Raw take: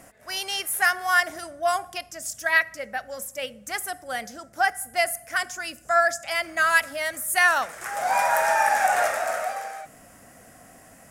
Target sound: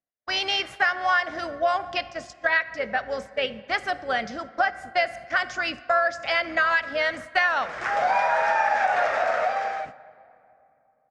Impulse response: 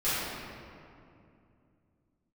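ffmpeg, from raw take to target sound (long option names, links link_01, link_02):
-filter_complex "[0:a]lowpass=frequency=4500:width=0.5412,lowpass=frequency=4500:width=1.3066,agate=range=-52dB:threshold=-43dB:ratio=16:detection=peak,acompressor=threshold=-27dB:ratio=4,asplit=2[link_01][link_02];[link_02]asetrate=35002,aresample=44100,atempo=1.25992,volume=-15dB[link_03];[link_01][link_03]amix=inputs=2:normalize=0,asplit=2[link_04][link_05];[1:a]atrim=start_sample=2205,asetrate=38367,aresample=44100[link_06];[link_05][link_06]afir=irnorm=-1:irlink=0,volume=-29dB[link_07];[link_04][link_07]amix=inputs=2:normalize=0,volume=6.5dB"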